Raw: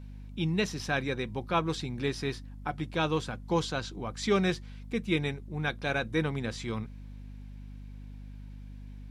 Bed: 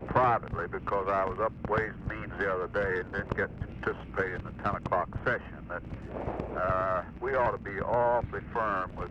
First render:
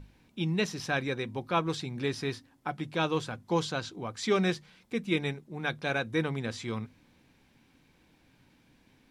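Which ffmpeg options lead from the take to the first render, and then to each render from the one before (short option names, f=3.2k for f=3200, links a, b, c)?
-af "bandreject=f=50:t=h:w=6,bandreject=f=100:t=h:w=6,bandreject=f=150:t=h:w=6,bandreject=f=200:t=h:w=6,bandreject=f=250:t=h:w=6"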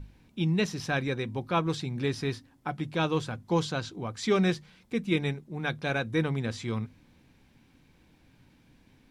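-af "lowshelf=f=190:g=7"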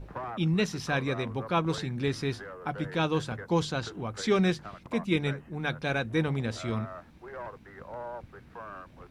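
-filter_complex "[1:a]volume=-13dB[a];[0:a][a]amix=inputs=2:normalize=0"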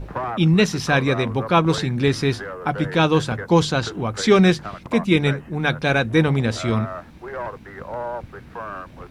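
-af "volume=10.5dB,alimiter=limit=-3dB:level=0:latency=1"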